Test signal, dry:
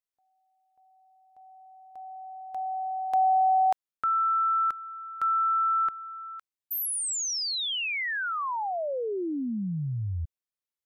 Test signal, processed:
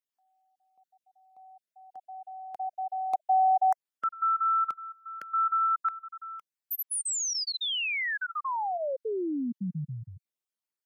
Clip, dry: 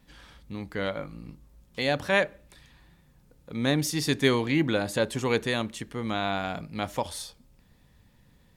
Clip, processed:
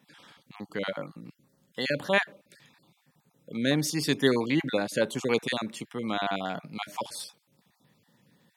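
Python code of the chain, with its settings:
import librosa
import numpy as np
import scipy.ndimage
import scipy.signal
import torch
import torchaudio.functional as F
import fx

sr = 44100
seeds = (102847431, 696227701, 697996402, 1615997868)

y = fx.spec_dropout(x, sr, seeds[0], share_pct=28)
y = scipy.signal.sosfilt(scipy.signal.butter(4, 140.0, 'highpass', fs=sr, output='sos'), y)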